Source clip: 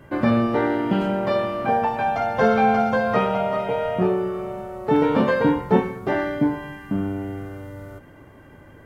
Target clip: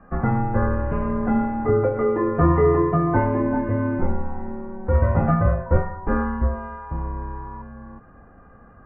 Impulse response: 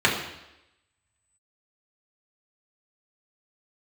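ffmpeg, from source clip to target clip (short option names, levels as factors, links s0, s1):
-filter_complex "[0:a]highpass=f=280:t=q:w=0.5412,highpass=f=280:t=q:w=1.307,lowpass=f=2100:t=q:w=0.5176,lowpass=f=2100:t=q:w=0.7071,lowpass=f=2100:t=q:w=1.932,afreqshift=-360,asettb=1/sr,asplit=3[s0][s1][s2];[s0]atrim=end=5.664[s3];[s1]atrim=start=5.66:end=7.62,asetpts=PTS-STARTPTS,afade=t=in:d=0.004:c=qsin,afade=t=out:st=1.956:d=0.004:c=qsin,aeval=exprs='val(0)+0.0126*sin(2*PI*970*n/s)':c=same[s4];[s2]atrim=start=7.616[s5];[s3][s4]acrossfade=d=0.004:c1=hsin:c2=qsin[s6];[s6][s5]acrossfade=d=0.004:c1=qsin:c2=hsin,volume=1.26"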